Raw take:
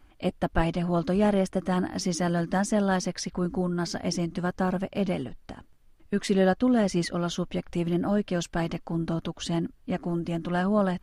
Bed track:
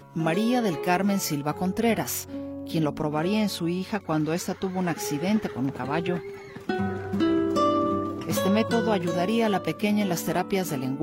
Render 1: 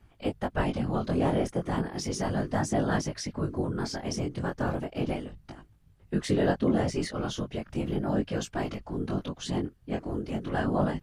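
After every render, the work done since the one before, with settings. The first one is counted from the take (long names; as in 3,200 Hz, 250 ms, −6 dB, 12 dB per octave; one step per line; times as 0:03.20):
random phases in short frames
chorus effect 0.35 Hz, delay 19 ms, depth 4.5 ms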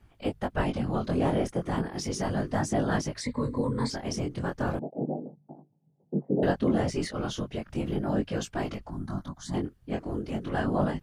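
0:03.21–0:03.90: EQ curve with evenly spaced ripples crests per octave 0.99, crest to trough 16 dB
0:04.79–0:06.43: Chebyshev band-pass filter 140–830 Hz, order 4
0:08.90–0:09.54: phaser with its sweep stopped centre 1,100 Hz, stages 4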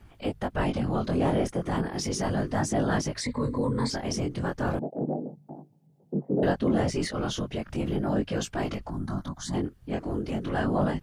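transient designer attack −4 dB, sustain +1 dB
in parallel at +1 dB: downward compressor, threshold −39 dBFS, peak gain reduction 17 dB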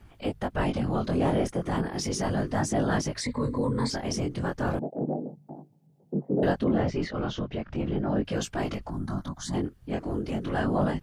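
0:06.64–0:08.25: high-frequency loss of the air 180 metres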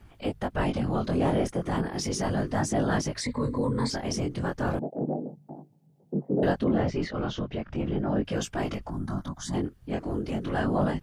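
0:05.09–0:06.20: floating-point word with a short mantissa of 8 bits
0:07.60–0:09.52: notch filter 4,200 Hz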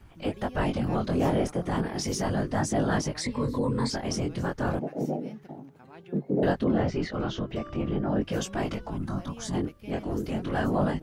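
mix in bed track −22 dB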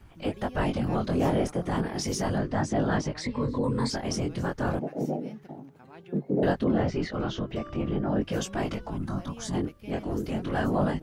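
0:02.38–0:03.64: high-frequency loss of the air 86 metres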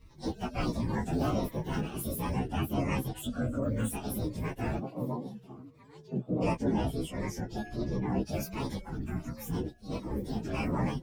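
partials spread apart or drawn together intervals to 123%
phaser whose notches keep moving one way falling 1.4 Hz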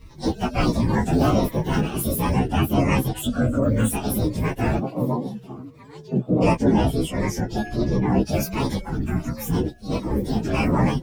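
level +11 dB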